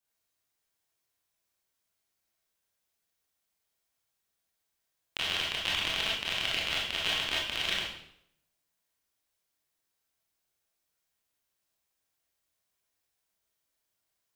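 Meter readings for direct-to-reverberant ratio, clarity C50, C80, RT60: -5.5 dB, 1.0 dB, 6.0 dB, 0.75 s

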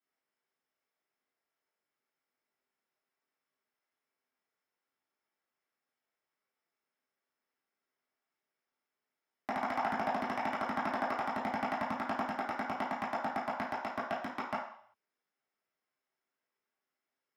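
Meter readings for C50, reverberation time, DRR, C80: 3.5 dB, 0.60 s, -9.5 dB, 8.0 dB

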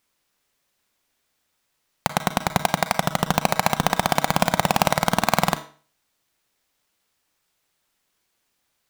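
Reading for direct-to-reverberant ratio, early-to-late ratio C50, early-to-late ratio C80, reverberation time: 10.5 dB, 13.5 dB, 18.0 dB, 0.40 s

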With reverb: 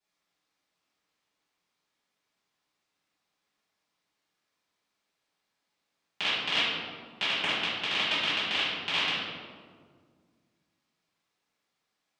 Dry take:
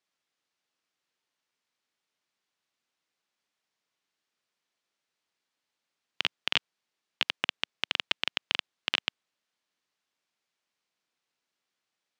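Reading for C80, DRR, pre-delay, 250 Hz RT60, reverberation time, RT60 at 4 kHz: 1.5 dB, -14.5 dB, 3 ms, 2.5 s, 1.8 s, 0.95 s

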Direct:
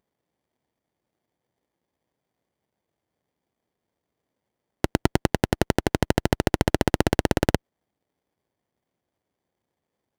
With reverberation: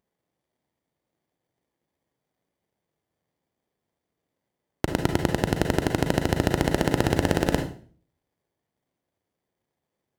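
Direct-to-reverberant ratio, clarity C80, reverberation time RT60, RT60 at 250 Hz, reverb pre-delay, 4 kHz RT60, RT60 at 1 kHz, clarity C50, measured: 4.5 dB, 13.0 dB, 0.45 s, 0.55 s, 34 ms, 0.40 s, 0.40 s, 8.0 dB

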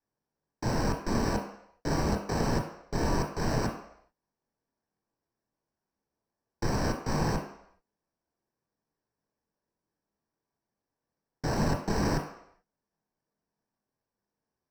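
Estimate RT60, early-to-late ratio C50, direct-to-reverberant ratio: no single decay rate, 6.5 dB, 1.5 dB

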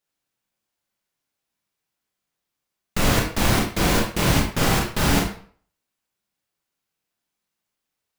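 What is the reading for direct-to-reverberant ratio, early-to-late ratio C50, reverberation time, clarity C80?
-1.5 dB, 5.5 dB, 0.50 s, 9.5 dB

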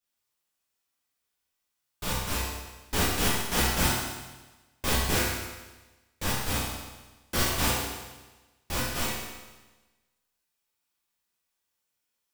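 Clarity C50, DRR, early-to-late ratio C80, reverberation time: -1.0 dB, -9.0 dB, 2.0 dB, 1.2 s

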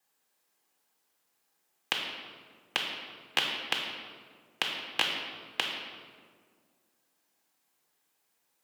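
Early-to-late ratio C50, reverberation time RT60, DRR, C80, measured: 3.0 dB, 1.9 s, 0.5 dB, 4.5 dB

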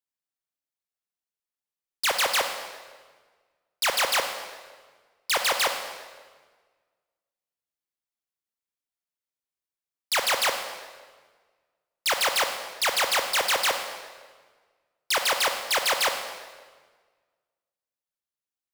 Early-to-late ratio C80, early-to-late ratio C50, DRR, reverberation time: 8.0 dB, 6.5 dB, 5.5 dB, 1.5 s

